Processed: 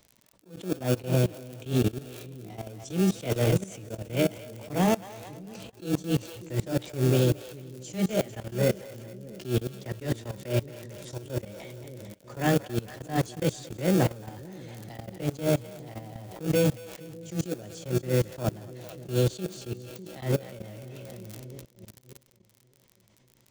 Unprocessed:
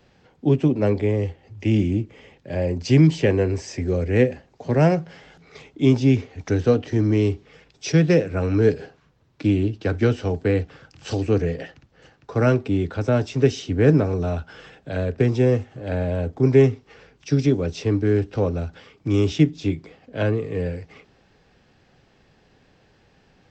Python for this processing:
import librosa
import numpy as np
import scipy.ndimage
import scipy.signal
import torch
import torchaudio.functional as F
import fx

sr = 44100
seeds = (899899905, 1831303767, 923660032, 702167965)

p1 = fx.pitch_heads(x, sr, semitones=3.5)
p2 = fx.sample_hold(p1, sr, seeds[0], rate_hz=1000.0, jitter_pct=0)
p3 = p1 + (p2 * librosa.db_to_amplitude(-11.0))
p4 = fx.echo_split(p3, sr, split_hz=470.0, low_ms=596, high_ms=224, feedback_pct=52, wet_db=-11)
p5 = fx.dmg_crackle(p4, sr, seeds[1], per_s=54.0, level_db=-30.0)
p6 = fx.high_shelf(p5, sr, hz=4700.0, db=11.5)
p7 = fx.level_steps(p6, sr, step_db=21)
y = fx.attack_slew(p7, sr, db_per_s=180.0)